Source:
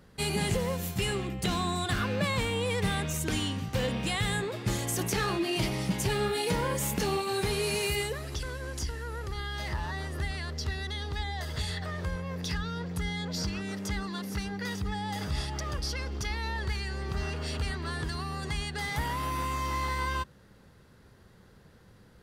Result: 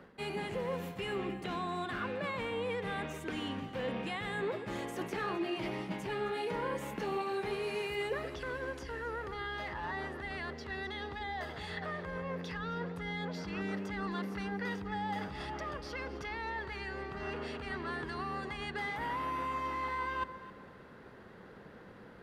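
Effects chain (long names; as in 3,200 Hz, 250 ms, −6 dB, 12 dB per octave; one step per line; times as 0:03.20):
reversed playback
downward compressor 10 to 1, threshold −39 dBFS, peak gain reduction 15.5 dB
reversed playback
three-way crossover with the lows and the highs turned down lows −15 dB, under 200 Hz, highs −18 dB, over 2,900 Hz
delay that swaps between a low-pass and a high-pass 132 ms, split 880 Hz, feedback 52%, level −10.5 dB
level +8 dB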